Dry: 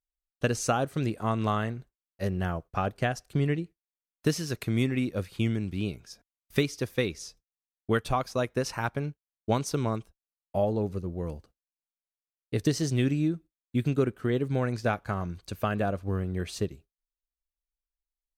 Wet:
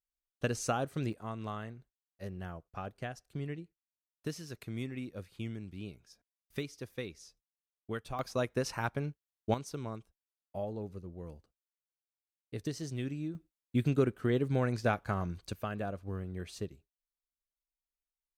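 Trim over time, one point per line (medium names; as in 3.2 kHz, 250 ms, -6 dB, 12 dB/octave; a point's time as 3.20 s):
-6 dB
from 1.13 s -12.5 dB
from 8.19 s -4 dB
from 9.54 s -11.5 dB
from 13.35 s -2.5 dB
from 15.53 s -9 dB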